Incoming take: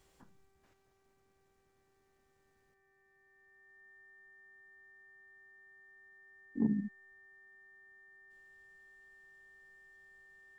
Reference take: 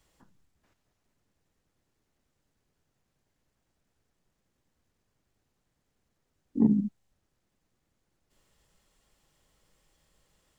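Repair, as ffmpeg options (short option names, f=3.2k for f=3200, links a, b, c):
-af "bandreject=f=389.2:t=h:w=4,bandreject=f=778.4:t=h:w=4,bandreject=f=1.1676k:t=h:w=4,bandreject=f=1.5568k:t=h:w=4,bandreject=f=1.946k:t=h:w=4,bandreject=f=2.3352k:t=h:w=4,bandreject=f=1.8k:w=30,asetnsamples=n=441:p=0,asendcmd='2.74 volume volume 8.5dB',volume=0dB"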